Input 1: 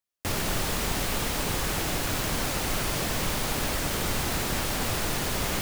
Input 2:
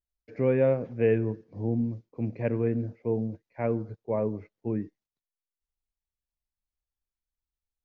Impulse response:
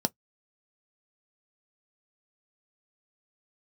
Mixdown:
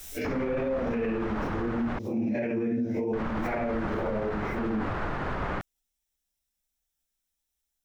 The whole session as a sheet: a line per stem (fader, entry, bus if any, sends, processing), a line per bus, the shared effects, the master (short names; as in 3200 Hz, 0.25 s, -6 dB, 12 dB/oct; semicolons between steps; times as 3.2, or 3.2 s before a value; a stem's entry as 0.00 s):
0.0 dB, 0.00 s, muted 1.99–3.13, no send, synth low-pass 1400 Hz, resonance Q 1.5
+0.5 dB, 0.00 s, send -14 dB, phase scrambler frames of 0.2 s; high shelf 2300 Hz +12 dB; backwards sustainer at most 38 dB/s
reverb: on, RT60 0.10 s, pre-delay 3 ms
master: limiter -22 dBFS, peak gain reduction 14.5 dB